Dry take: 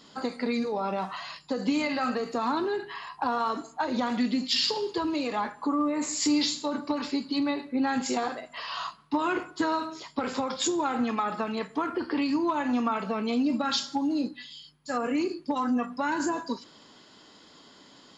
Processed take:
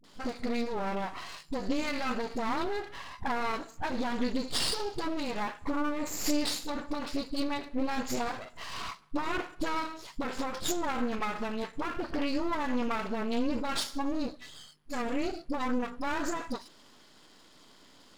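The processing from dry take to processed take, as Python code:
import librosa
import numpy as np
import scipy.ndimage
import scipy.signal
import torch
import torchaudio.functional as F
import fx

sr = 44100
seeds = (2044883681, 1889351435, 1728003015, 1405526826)

y = np.maximum(x, 0.0)
y = fx.dispersion(y, sr, late='highs', ms=41.0, hz=370.0)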